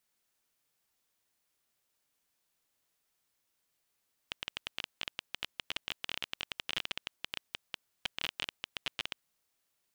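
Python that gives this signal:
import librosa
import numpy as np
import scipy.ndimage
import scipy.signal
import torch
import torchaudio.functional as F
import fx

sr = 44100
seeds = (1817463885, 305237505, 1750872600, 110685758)

y = fx.geiger_clicks(sr, seeds[0], length_s=4.89, per_s=16.0, level_db=-17.0)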